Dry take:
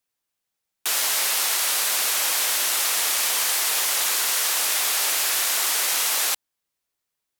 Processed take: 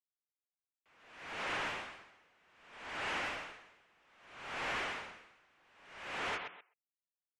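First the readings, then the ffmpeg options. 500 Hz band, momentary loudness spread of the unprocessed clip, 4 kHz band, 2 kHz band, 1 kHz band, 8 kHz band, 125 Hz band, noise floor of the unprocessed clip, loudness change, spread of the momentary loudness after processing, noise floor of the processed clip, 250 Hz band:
-10.0 dB, 1 LU, -23.5 dB, -13.0 dB, -12.0 dB, -38.0 dB, n/a, -82 dBFS, -20.0 dB, 20 LU, under -85 dBFS, -4.0 dB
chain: -filter_complex "[0:a]highpass=f=150:t=q:w=0.5412,highpass=f=150:t=q:w=1.307,lowpass=f=3.2k:t=q:w=0.5176,lowpass=f=3.2k:t=q:w=0.7071,lowpass=f=3.2k:t=q:w=1.932,afreqshift=-360,asoftclip=type=hard:threshold=-25.5dB,acontrast=55,bandreject=f=60:t=h:w=6,bandreject=f=120:t=h:w=6,bandreject=f=180:t=h:w=6,aecho=1:1:130|260|390:0.501|0.0802|0.0128,agate=range=-30dB:threshold=-22dB:ratio=16:detection=peak,acompressor=threshold=-46dB:ratio=5,asplit=2[a][b];[b]highpass=f=720:p=1,volume=35dB,asoftclip=type=tanh:threshold=-37.5dB[c];[a][c]amix=inputs=2:normalize=0,lowpass=f=2.2k:p=1,volume=-6dB,afftfilt=real='re*gte(hypot(re,im),0.000631)':imag='im*gte(hypot(re,im),0.000631)':win_size=1024:overlap=0.75,aeval=exprs='val(0)*pow(10,-34*(0.5-0.5*cos(2*PI*0.63*n/s))/20)':c=same,volume=7.5dB"

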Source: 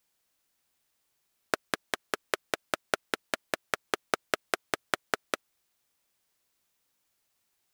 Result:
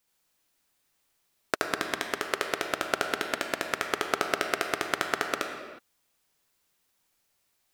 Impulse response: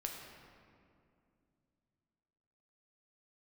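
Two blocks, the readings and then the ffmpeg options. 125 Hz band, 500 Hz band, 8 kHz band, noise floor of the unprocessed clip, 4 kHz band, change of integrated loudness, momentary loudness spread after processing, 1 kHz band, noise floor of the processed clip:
+3.5 dB, +3.5 dB, +2.5 dB, -77 dBFS, +3.0 dB, +3.5 dB, 4 LU, +4.0 dB, -74 dBFS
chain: -filter_complex "[0:a]asplit=2[a][b];[1:a]atrim=start_sample=2205,afade=t=out:st=0.42:d=0.01,atrim=end_sample=18963,adelay=74[c];[b][c]afir=irnorm=-1:irlink=0,volume=2dB[d];[a][d]amix=inputs=2:normalize=0"

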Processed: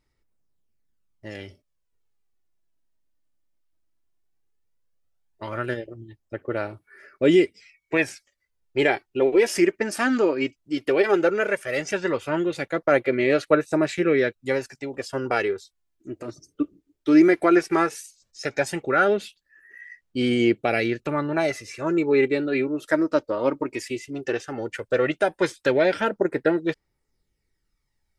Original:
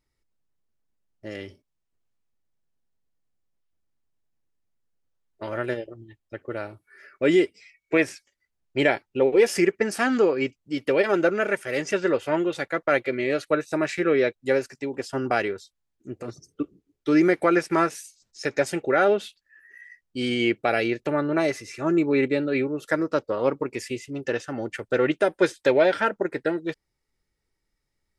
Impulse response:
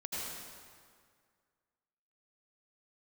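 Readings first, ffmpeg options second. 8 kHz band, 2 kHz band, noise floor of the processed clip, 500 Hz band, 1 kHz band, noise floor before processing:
+1.0 dB, +1.0 dB, -75 dBFS, +0.5 dB, +0.5 dB, -79 dBFS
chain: -af "aphaser=in_gain=1:out_gain=1:delay=3.3:decay=0.41:speed=0.15:type=sinusoidal"

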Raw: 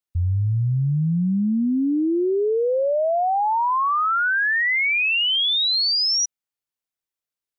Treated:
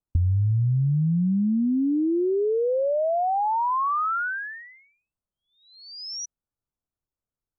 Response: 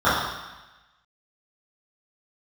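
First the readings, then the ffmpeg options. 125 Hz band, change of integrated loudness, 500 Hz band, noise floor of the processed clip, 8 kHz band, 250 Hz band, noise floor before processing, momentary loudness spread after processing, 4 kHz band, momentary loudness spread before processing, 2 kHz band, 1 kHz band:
-0.5 dB, -4.0 dB, -2.5 dB, under -85 dBFS, n/a, -1.5 dB, under -85 dBFS, 11 LU, -22.0 dB, 5 LU, -13.5 dB, -3.5 dB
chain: -af "aemphasis=mode=reproduction:type=riaa,acompressor=threshold=-22dB:ratio=5,asuperstop=centerf=2900:order=8:qfactor=0.7"

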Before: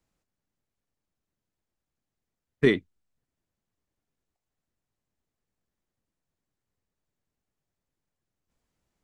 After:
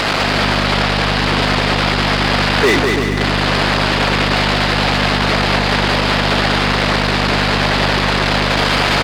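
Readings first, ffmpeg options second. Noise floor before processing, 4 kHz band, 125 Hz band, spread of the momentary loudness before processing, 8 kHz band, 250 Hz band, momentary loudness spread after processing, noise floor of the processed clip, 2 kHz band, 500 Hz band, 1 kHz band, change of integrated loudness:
under -85 dBFS, +33.5 dB, +25.5 dB, 5 LU, n/a, +18.5 dB, 1 LU, -16 dBFS, +26.5 dB, +17.0 dB, +44.0 dB, +11.0 dB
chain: -filter_complex "[0:a]aeval=exprs='val(0)+0.5*0.0473*sgn(val(0))':c=same,lowshelf=f=180:g=-9.5,aeval=exprs='val(0)+0.02*(sin(2*PI*50*n/s)+sin(2*PI*2*50*n/s)/2+sin(2*PI*3*50*n/s)/3+sin(2*PI*4*50*n/s)/4+sin(2*PI*5*50*n/s)/5)':c=same,aresample=11025,aresample=44100,asplit=2[a][b];[b]highpass=f=720:p=1,volume=36dB,asoftclip=type=tanh:threshold=-5dB[c];[a][c]amix=inputs=2:normalize=0,lowpass=f=3.5k:p=1,volume=-6dB,asplit=2[d][e];[e]aecho=0:1:200|340|438|506.6|554.6:0.631|0.398|0.251|0.158|0.1[f];[d][f]amix=inputs=2:normalize=0"

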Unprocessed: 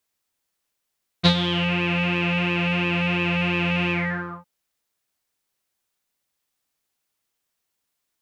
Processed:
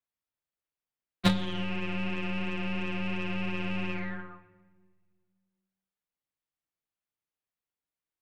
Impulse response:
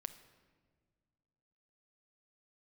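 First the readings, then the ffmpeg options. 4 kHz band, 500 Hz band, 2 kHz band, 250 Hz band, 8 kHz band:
-12.5 dB, -10.0 dB, -12.5 dB, -7.5 dB, n/a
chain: -filter_complex "[0:a]afreqshift=17,aeval=exprs='0.562*(cos(1*acos(clip(val(0)/0.562,-1,1)))-cos(1*PI/2))+0.141*(cos(3*acos(clip(val(0)/0.562,-1,1)))-cos(3*PI/2))+0.0158*(cos(6*acos(clip(val(0)/0.562,-1,1)))-cos(6*PI/2))+0.02*(cos(8*acos(clip(val(0)/0.562,-1,1)))-cos(8*PI/2))':c=same,asplit=2[a][b];[1:a]atrim=start_sample=2205,lowpass=3.5k,lowshelf=f=160:g=7[c];[b][c]afir=irnorm=-1:irlink=0,volume=6.5dB[d];[a][d]amix=inputs=2:normalize=0,volume=-8.5dB"

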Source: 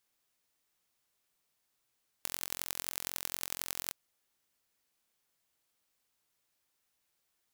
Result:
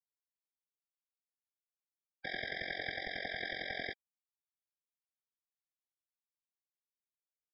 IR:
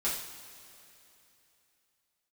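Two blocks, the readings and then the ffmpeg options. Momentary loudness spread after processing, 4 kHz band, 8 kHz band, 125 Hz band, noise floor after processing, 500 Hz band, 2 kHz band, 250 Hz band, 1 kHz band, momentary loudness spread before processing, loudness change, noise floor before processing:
5 LU, -0.5 dB, under -40 dB, +2.5 dB, under -85 dBFS, +8.0 dB, +9.0 dB, +4.0 dB, +2.0 dB, 6 LU, -2.5 dB, -80 dBFS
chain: -filter_complex "[0:a]highpass=45,equalizer=f=1.3k:t=o:w=2.1:g=11.5,aresample=16000,asoftclip=type=hard:threshold=-21.5dB,aresample=44100,asplit=2[a][b];[b]adelay=15,volume=-10dB[c];[a][c]amix=inputs=2:normalize=0,acrusher=bits=7:mix=0:aa=0.000001,afftfilt=real='hypot(re,im)*cos(2*PI*random(0))':imag='hypot(re,im)*sin(2*PI*random(1))':win_size=512:overlap=0.75,aresample=11025,aresample=44100,afftfilt=real='re*eq(mod(floor(b*sr/1024/780),2),0)':imag='im*eq(mod(floor(b*sr/1024/780),2),0)':win_size=1024:overlap=0.75,volume=11dB"

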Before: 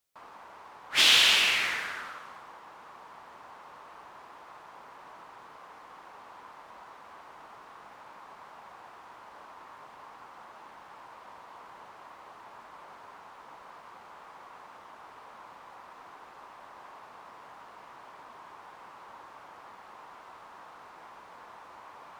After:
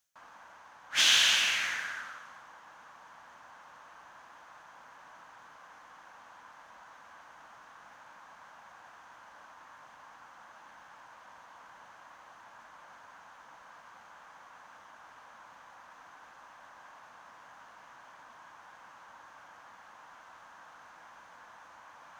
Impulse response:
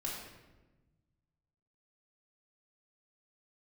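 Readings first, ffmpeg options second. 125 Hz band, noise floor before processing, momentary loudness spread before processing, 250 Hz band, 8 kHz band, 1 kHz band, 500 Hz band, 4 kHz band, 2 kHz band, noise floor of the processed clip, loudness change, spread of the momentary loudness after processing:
-6.0 dB, -51 dBFS, 18 LU, -7.5 dB, +1.0 dB, -4.5 dB, -7.5 dB, -3.5 dB, -3.0 dB, -55 dBFS, -3.5 dB, 19 LU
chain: -af "areverse,acompressor=mode=upward:threshold=-45dB:ratio=2.5,areverse,equalizer=f=400:t=o:w=0.33:g=-12,equalizer=f=1.6k:t=o:w=0.33:g=8,equalizer=f=3.15k:t=o:w=0.33:g=3,equalizer=f=6.3k:t=o:w=0.33:g=10,volume=-6dB"

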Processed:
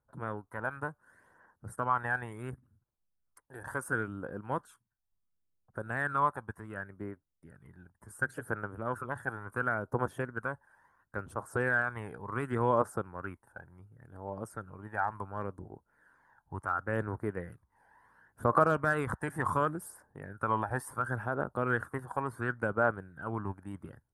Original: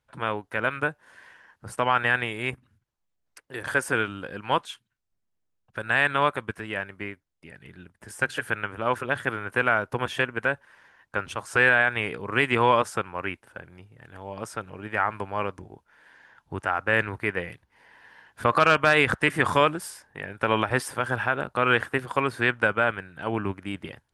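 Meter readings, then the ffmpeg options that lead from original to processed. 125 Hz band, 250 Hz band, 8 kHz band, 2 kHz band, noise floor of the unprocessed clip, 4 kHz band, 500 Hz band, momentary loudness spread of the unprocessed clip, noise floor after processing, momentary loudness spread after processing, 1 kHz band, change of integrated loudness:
-4.0 dB, -6.5 dB, -9.5 dB, -11.5 dB, -77 dBFS, under -25 dB, -7.5 dB, 17 LU, -81 dBFS, 16 LU, -7.0 dB, -9.0 dB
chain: -af "firequalizer=gain_entry='entry(1400,0);entry(2500,-22);entry(9600,0)':delay=0.05:min_phase=1,aphaser=in_gain=1:out_gain=1:delay=1.3:decay=0.5:speed=0.7:type=triangular,volume=-8dB"

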